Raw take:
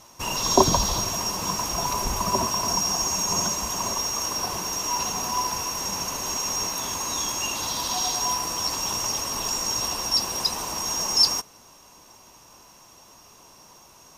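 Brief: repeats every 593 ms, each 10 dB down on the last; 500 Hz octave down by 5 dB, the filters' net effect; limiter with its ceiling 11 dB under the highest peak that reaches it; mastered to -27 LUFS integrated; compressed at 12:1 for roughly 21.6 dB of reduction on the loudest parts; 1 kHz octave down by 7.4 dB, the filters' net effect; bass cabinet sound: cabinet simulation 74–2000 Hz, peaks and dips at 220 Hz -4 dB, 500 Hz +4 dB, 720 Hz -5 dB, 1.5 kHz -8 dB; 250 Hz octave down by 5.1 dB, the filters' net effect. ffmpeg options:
-af "equalizer=f=250:t=o:g=-3.5,equalizer=f=500:t=o:g=-4.5,equalizer=f=1000:t=o:g=-5,acompressor=threshold=0.0141:ratio=12,alimiter=level_in=3.55:limit=0.0631:level=0:latency=1,volume=0.282,highpass=f=74:w=0.5412,highpass=f=74:w=1.3066,equalizer=f=220:t=q:w=4:g=-4,equalizer=f=500:t=q:w=4:g=4,equalizer=f=720:t=q:w=4:g=-5,equalizer=f=1500:t=q:w=4:g=-8,lowpass=f=2000:w=0.5412,lowpass=f=2000:w=1.3066,aecho=1:1:593|1186|1779|2372:0.316|0.101|0.0324|0.0104,volume=23.7"

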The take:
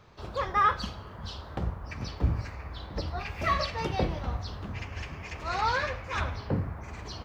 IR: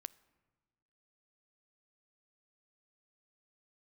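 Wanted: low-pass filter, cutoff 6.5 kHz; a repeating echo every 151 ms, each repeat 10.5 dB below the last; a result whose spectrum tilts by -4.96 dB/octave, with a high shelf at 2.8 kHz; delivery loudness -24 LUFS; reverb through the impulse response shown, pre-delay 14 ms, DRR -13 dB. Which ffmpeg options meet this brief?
-filter_complex "[0:a]lowpass=6500,highshelf=f=2800:g=-6.5,aecho=1:1:151|302|453:0.299|0.0896|0.0269,asplit=2[s0][s1];[1:a]atrim=start_sample=2205,adelay=14[s2];[s1][s2]afir=irnorm=-1:irlink=0,volume=7.5[s3];[s0][s3]amix=inputs=2:normalize=0,volume=0.596"

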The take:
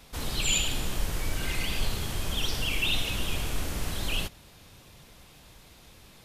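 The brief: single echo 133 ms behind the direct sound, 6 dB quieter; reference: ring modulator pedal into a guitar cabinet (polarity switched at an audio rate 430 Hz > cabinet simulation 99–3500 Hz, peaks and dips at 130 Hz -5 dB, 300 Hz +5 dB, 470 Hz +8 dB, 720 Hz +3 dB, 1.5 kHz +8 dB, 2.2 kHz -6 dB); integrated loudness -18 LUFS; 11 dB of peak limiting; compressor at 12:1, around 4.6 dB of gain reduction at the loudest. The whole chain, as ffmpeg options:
-af "acompressor=threshold=0.0501:ratio=12,alimiter=level_in=1.68:limit=0.0631:level=0:latency=1,volume=0.596,aecho=1:1:133:0.501,aeval=exprs='val(0)*sgn(sin(2*PI*430*n/s))':c=same,highpass=99,equalizer=f=130:t=q:w=4:g=-5,equalizer=f=300:t=q:w=4:g=5,equalizer=f=470:t=q:w=4:g=8,equalizer=f=720:t=q:w=4:g=3,equalizer=f=1500:t=q:w=4:g=8,equalizer=f=2200:t=q:w=4:g=-6,lowpass=f=3500:w=0.5412,lowpass=f=3500:w=1.3066,volume=4.47"

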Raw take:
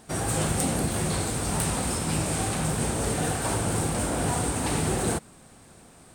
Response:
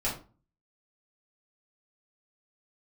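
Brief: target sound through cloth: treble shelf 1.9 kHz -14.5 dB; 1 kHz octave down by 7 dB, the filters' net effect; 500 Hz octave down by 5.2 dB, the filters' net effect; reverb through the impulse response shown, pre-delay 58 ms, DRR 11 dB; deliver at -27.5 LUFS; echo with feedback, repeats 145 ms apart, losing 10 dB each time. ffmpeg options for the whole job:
-filter_complex "[0:a]equalizer=f=500:t=o:g=-4.5,equalizer=f=1000:t=o:g=-4,aecho=1:1:145|290|435|580:0.316|0.101|0.0324|0.0104,asplit=2[s0][s1];[1:a]atrim=start_sample=2205,adelay=58[s2];[s1][s2]afir=irnorm=-1:irlink=0,volume=0.126[s3];[s0][s3]amix=inputs=2:normalize=0,highshelf=f=1900:g=-14.5,volume=1.26"

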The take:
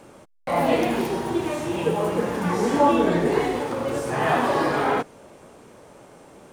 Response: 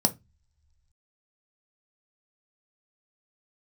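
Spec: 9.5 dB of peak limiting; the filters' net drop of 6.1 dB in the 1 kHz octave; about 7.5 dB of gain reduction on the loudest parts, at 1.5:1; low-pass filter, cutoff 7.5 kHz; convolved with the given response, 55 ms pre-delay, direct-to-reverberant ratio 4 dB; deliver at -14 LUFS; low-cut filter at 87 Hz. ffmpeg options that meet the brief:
-filter_complex "[0:a]highpass=87,lowpass=7500,equalizer=f=1000:t=o:g=-8,acompressor=threshold=0.0126:ratio=1.5,alimiter=level_in=1.26:limit=0.0631:level=0:latency=1,volume=0.794,asplit=2[s0][s1];[1:a]atrim=start_sample=2205,adelay=55[s2];[s1][s2]afir=irnorm=-1:irlink=0,volume=0.211[s3];[s0][s3]amix=inputs=2:normalize=0,volume=7.08"

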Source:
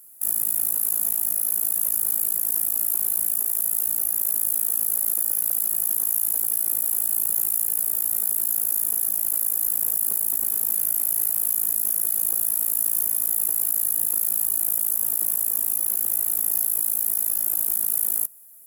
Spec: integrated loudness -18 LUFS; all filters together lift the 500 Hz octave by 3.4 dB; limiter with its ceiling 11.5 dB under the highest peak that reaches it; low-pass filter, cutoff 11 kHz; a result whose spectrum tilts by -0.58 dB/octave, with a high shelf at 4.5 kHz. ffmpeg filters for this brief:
-af "lowpass=11000,equalizer=f=500:t=o:g=4.5,highshelf=f=4500:g=-8,volume=15,alimiter=limit=0.422:level=0:latency=1"

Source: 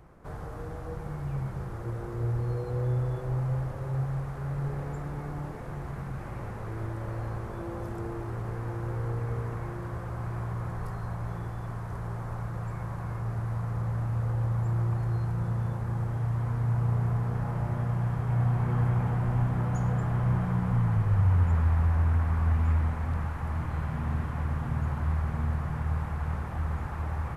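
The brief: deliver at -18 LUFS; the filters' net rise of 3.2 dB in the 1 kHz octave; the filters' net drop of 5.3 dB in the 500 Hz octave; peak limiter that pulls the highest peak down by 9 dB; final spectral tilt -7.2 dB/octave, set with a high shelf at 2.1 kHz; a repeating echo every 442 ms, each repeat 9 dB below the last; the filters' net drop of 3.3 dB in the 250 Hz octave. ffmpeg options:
-af "equalizer=f=250:t=o:g=-5.5,equalizer=f=500:t=o:g=-7,equalizer=f=1000:t=o:g=4.5,highshelf=f=2100:g=7,alimiter=limit=0.0631:level=0:latency=1,aecho=1:1:442|884|1326|1768:0.355|0.124|0.0435|0.0152,volume=5.62"

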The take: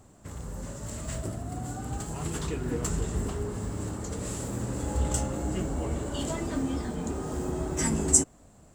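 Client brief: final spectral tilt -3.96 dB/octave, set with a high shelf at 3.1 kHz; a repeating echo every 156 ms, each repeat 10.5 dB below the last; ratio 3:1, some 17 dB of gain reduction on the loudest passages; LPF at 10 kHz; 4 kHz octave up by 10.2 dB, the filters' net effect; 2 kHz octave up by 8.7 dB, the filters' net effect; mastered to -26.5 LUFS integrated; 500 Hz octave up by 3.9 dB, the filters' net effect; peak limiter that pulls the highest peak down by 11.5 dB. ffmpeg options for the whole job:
-af "lowpass=10000,equalizer=f=500:t=o:g=4.5,equalizer=f=2000:t=o:g=6.5,highshelf=f=3100:g=9,equalizer=f=4000:t=o:g=4.5,acompressor=threshold=0.0282:ratio=3,alimiter=level_in=1.19:limit=0.0631:level=0:latency=1,volume=0.841,aecho=1:1:156|312|468:0.299|0.0896|0.0269,volume=2.66"

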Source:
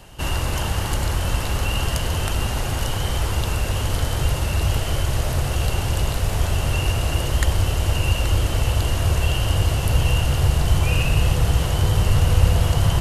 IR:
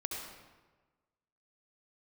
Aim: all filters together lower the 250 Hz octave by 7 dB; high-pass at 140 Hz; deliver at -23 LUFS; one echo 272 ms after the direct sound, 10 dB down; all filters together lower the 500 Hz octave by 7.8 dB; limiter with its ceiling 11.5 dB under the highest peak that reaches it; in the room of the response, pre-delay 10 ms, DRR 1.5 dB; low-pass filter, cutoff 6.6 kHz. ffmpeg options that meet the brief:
-filter_complex "[0:a]highpass=140,lowpass=6600,equalizer=f=250:t=o:g=-8,equalizer=f=500:t=o:g=-8,alimiter=limit=0.119:level=0:latency=1,aecho=1:1:272:0.316,asplit=2[s0][s1];[1:a]atrim=start_sample=2205,adelay=10[s2];[s1][s2]afir=irnorm=-1:irlink=0,volume=0.668[s3];[s0][s3]amix=inputs=2:normalize=0,volume=1.41"

